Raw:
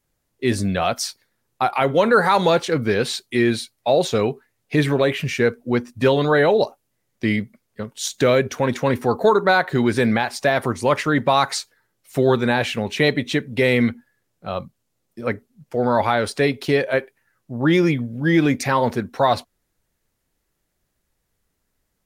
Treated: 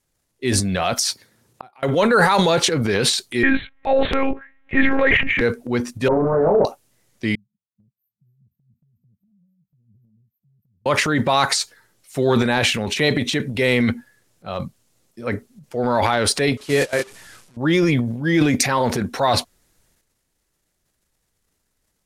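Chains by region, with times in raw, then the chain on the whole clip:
0:01.08–0:01.83: high-pass filter 84 Hz + low-shelf EQ 440 Hz +9 dB + gate with flip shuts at −18 dBFS, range −39 dB
0:03.43–0:05.41: low-pass with resonance 1,900 Hz, resonance Q 3.2 + low-shelf EQ 89 Hz +11.5 dB + one-pitch LPC vocoder at 8 kHz 270 Hz
0:06.08–0:06.65: variable-slope delta modulation 16 kbit/s + Butterworth low-pass 1,200 Hz + double-tracking delay 25 ms −3 dB
0:07.35–0:10.86: low-shelf EQ 230 Hz +9 dB + LFO wah 3.4 Hz 650–2,600 Hz, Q 8.4 + linear-phase brick-wall band-stop 210–12,000 Hz
0:16.57–0:17.57: linear delta modulator 64 kbit/s, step −25.5 dBFS + noise gate −21 dBFS, range −23 dB + double-tracking delay 28 ms −10 dB
whole clip: transient designer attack −2 dB, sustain +10 dB; Bessel low-pass filter 9,800 Hz, order 2; high-shelf EQ 4,700 Hz +8.5 dB; level −1 dB

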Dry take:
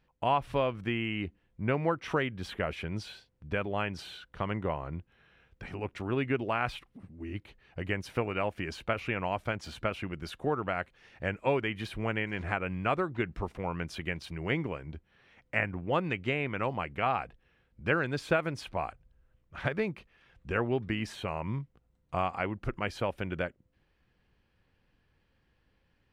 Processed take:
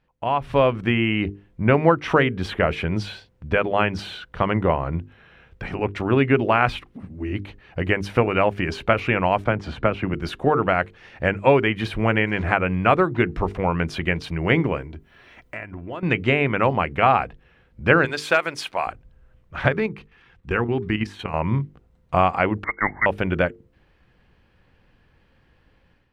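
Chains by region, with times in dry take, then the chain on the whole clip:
0:09.44–0:10.14: low-pass filter 1,800 Hz 6 dB per octave + multiband upward and downward compressor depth 40%
0:14.82–0:16.03: high-shelf EQ 8,500 Hz +11.5 dB + comb filter 3 ms, depth 38% + downward compressor 3 to 1, threshold −47 dBFS
0:18.05–0:18.87: high-pass filter 990 Hz 6 dB per octave + high-shelf EQ 4,400 Hz +9 dB + hard clipping −18 dBFS
0:19.74–0:21.34: parametric band 600 Hz −15 dB 0.22 octaves + output level in coarse steps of 11 dB
0:22.64–0:23.06: Butterworth high-pass 330 Hz 48 dB per octave + voice inversion scrambler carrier 2,500 Hz
whole clip: high-shelf EQ 5,000 Hz −10 dB; mains-hum notches 50/100/150/200/250/300/350/400/450 Hz; automatic gain control gain up to 10 dB; level +3 dB

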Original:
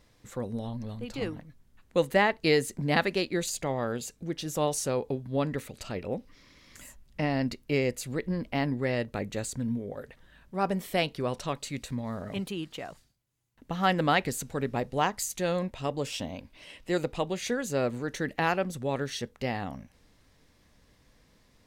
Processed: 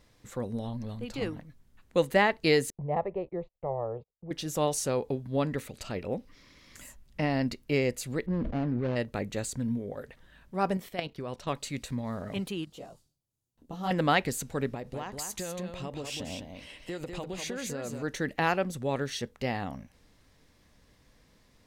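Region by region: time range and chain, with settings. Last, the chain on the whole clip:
0:02.70–0:04.31: low-pass filter 1,500 Hz 24 dB per octave + phaser with its sweep stopped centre 630 Hz, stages 4 + noise gate −49 dBFS, range −35 dB
0:08.26–0:08.96: running median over 41 samples + high-frequency loss of the air 240 metres + level that may fall only so fast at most 23 dB per second
0:10.77–0:11.47: dynamic equaliser 9,700 Hz, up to −7 dB, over −53 dBFS, Q 0.9 + output level in coarse steps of 12 dB
0:12.65–0:13.91: parametric band 1,900 Hz −14.5 dB 1.3 octaves + micro pitch shift up and down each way 24 cents
0:14.74–0:18.03: downward compressor 12 to 1, threshold −32 dBFS + single-tap delay 199 ms −5.5 dB
whole clip: no processing

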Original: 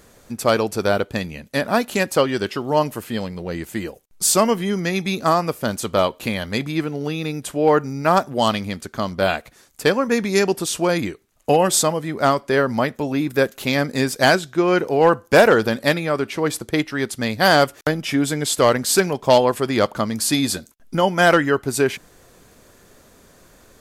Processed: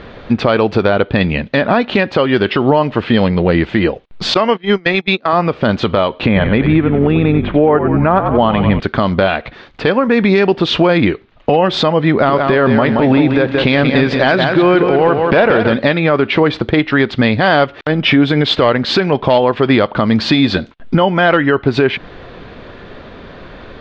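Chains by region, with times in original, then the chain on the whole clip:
0:04.34–0:05.33: high-pass filter 430 Hz 6 dB per octave + noise gate −27 dBFS, range −27 dB
0:06.26–0:08.80: high-frequency loss of the air 490 metres + echo with shifted repeats 92 ms, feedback 49%, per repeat −56 Hz, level −10 dB
0:12.11–0:15.73: downward compressor, threshold −22 dBFS + feedback echo at a low word length 177 ms, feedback 35%, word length 8 bits, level −6 dB
whole clip: Butterworth low-pass 3,800 Hz 36 dB per octave; downward compressor 10 to 1, threshold −23 dBFS; boost into a limiter +18.5 dB; level −1 dB

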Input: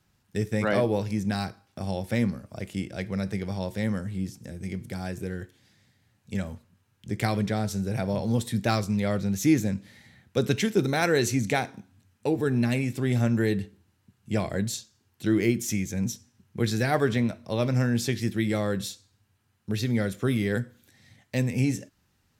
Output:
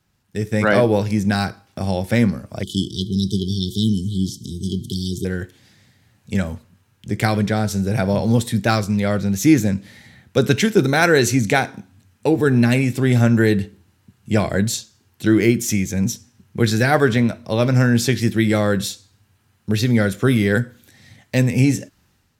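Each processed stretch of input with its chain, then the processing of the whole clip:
0:02.63–0:05.25: linear-phase brick-wall band-stop 430–3,000 Hz + parametric band 2,700 Hz +13 dB 2 octaves
whole clip: dynamic equaliser 1,500 Hz, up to +5 dB, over −49 dBFS, Q 6; automatic gain control gain up to 8.5 dB; level +1 dB

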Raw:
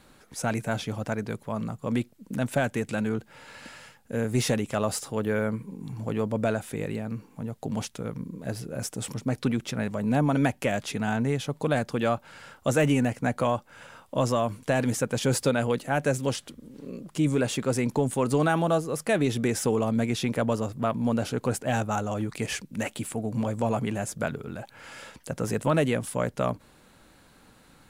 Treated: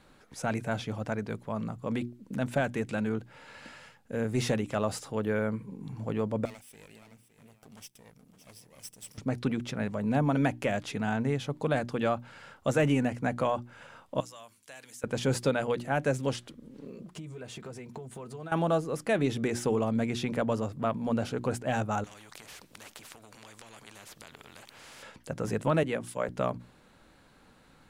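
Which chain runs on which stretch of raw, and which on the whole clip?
0:06.45–0:09.18: lower of the sound and its delayed copy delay 0.37 ms + first-order pre-emphasis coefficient 0.9 + single-tap delay 564 ms −12.5 dB
0:14.20–0:15.04: first-order pre-emphasis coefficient 0.97 + mains-hum notches 50/100/150/200/250/300/350 Hz + downward compressor 2 to 1, threshold −40 dBFS
0:16.87–0:18.52: one scale factor per block 7 bits + downward compressor 16 to 1, threshold −33 dBFS + notch comb filter 280 Hz
0:22.04–0:25.03: downward compressor 4 to 1, threshold −31 dBFS + every bin compressed towards the loudest bin 4 to 1
0:25.83–0:26.29: low-shelf EQ 190 Hz −6.5 dB + multiband upward and downward expander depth 100%
whole clip: high-shelf EQ 7,300 Hz −10 dB; mains-hum notches 60/120/180/240/300/360 Hz; level −2.5 dB

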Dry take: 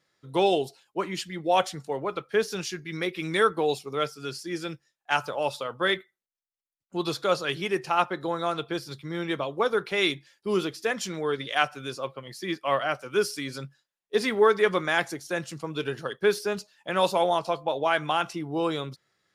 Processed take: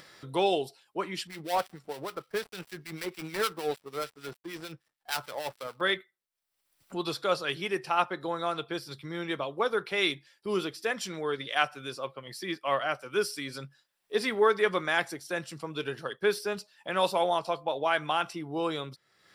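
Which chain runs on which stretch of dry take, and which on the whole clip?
0:01.27–0:05.81: gap after every zero crossing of 0.15 ms + two-band tremolo in antiphase 6.6 Hz, crossover 1,500 Hz
whole clip: low-shelf EQ 410 Hz −4 dB; notch filter 6,600 Hz, Q 6.9; upward compression, threshold −34 dBFS; level −2 dB

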